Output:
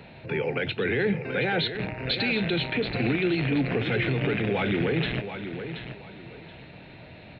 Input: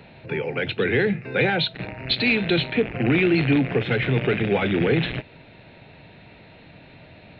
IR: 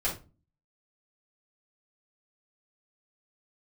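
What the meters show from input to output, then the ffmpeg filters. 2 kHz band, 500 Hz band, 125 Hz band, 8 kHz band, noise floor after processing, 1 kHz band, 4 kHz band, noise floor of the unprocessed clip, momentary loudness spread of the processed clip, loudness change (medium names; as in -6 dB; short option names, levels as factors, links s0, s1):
-4.0 dB, -4.5 dB, -4.0 dB, no reading, -47 dBFS, -3.0 dB, -3.5 dB, -48 dBFS, 19 LU, -5.0 dB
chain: -filter_complex "[0:a]alimiter=limit=0.126:level=0:latency=1:release=57,asplit=2[s0][s1];[s1]aecho=0:1:728|1456|2184:0.335|0.0871|0.0226[s2];[s0][s2]amix=inputs=2:normalize=0"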